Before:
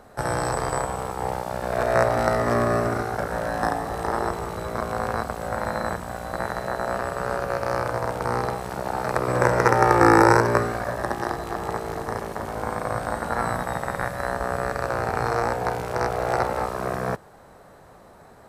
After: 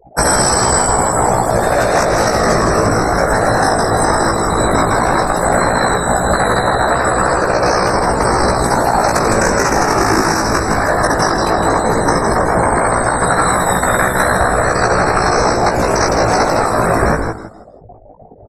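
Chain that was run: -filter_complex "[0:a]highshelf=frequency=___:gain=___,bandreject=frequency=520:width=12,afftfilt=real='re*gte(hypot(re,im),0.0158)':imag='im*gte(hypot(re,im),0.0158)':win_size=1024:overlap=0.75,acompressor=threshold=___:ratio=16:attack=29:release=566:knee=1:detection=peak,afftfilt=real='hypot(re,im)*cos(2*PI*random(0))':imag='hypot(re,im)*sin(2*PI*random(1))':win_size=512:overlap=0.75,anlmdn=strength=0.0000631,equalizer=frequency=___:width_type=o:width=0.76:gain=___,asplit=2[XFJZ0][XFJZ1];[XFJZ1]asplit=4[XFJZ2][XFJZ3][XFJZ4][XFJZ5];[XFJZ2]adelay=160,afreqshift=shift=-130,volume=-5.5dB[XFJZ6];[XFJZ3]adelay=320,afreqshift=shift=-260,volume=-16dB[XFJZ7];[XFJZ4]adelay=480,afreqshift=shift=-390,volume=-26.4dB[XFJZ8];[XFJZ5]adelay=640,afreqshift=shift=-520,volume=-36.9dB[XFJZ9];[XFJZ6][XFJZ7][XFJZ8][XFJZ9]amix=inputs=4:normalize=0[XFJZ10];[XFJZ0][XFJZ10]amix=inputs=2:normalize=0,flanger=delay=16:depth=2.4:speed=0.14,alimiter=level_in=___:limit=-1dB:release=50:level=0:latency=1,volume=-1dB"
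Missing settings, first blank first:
4700, 11, -27dB, 6100, 7.5, 27dB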